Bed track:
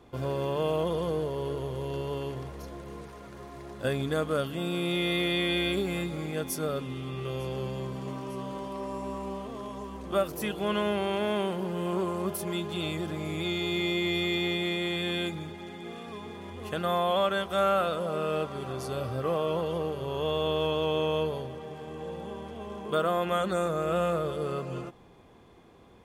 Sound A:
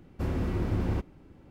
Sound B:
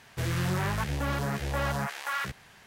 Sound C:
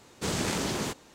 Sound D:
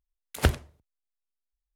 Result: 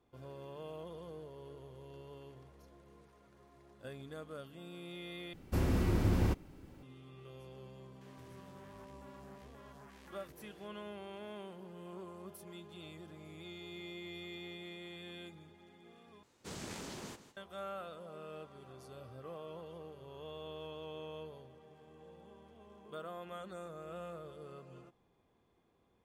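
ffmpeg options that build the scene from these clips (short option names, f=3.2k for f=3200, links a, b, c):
-filter_complex "[0:a]volume=-18.5dB[a];[1:a]highshelf=f=4.6k:g=12[b];[2:a]acompressor=threshold=-45dB:ratio=6:attack=3.2:release=140:knee=1:detection=peak[c];[3:a]aecho=1:1:160:0.224[d];[a]asplit=3[e][f][g];[e]atrim=end=5.334[h];[b]atrim=end=1.5,asetpts=PTS-STARTPTS,volume=-1.5dB[i];[f]atrim=start=6.826:end=16.234[j];[d]atrim=end=1.14,asetpts=PTS-STARTPTS,volume=-15.5dB[k];[g]atrim=start=17.366[l];[c]atrim=end=2.66,asetpts=PTS-STARTPTS,volume=-11.5dB,afade=t=in:d=0.004:c=hsin,afade=t=out:st=2.656:d=0.004:c=hsin,adelay=8010[m];[h][i]acrossfade=d=0.004:c1=hsin:c2=hsin[n];[n][j]acrossfade=d=0.004:c1=hsin:c2=hsin[o];[o][k]acrossfade=d=0.004:c1=hsin:c2=hsin[p];[p][l]acrossfade=d=0.004:c1=hsin:c2=hsin[q];[q][m]amix=inputs=2:normalize=0"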